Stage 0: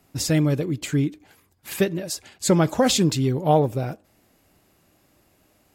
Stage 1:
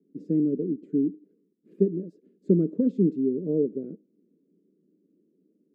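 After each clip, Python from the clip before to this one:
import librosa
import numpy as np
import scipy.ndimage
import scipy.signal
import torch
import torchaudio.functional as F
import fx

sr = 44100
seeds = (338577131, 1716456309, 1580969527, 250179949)

y = scipy.signal.sosfilt(scipy.signal.ellip(3, 1.0, 40, [180.0, 440.0], 'bandpass', fs=sr, output='sos'), x)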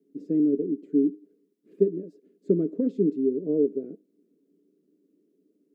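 y = fx.low_shelf(x, sr, hz=340.0, db=-12.0)
y = fx.small_body(y, sr, hz=(290.0, 410.0, 670.0), ring_ms=90, db=8)
y = F.gain(torch.from_numpy(y), 3.0).numpy()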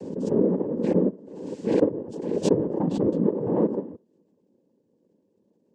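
y = fx.noise_vocoder(x, sr, seeds[0], bands=8)
y = fx.pre_swell(y, sr, db_per_s=48.0)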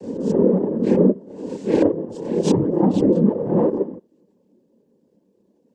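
y = fx.chorus_voices(x, sr, voices=4, hz=1.3, base_ms=28, depth_ms=3.0, mix_pct=65)
y = F.gain(torch.from_numpy(y), 8.0).numpy()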